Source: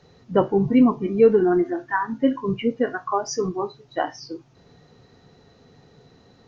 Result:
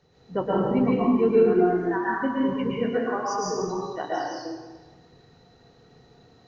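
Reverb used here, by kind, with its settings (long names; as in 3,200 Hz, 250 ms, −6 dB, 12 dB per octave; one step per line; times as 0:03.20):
dense smooth reverb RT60 1.3 s, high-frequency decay 0.85×, pre-delay 105 ms, DRR −6.5 dB
level −9 dB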